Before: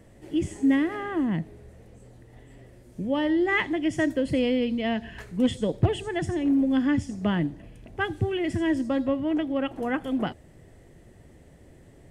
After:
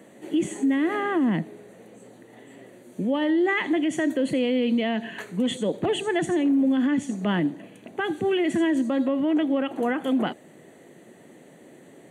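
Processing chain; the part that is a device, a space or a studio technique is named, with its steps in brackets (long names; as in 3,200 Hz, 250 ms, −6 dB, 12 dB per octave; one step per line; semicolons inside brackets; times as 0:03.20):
PA system with an anti-feedback notch (high-pass filter 190 Hz 24 dB per octave; Butterworth band-reject 5,200 Hz, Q 4.2; brickwall limiter −22.5 dBFS, peak gain reduction 10 dB)
level +6.5 dB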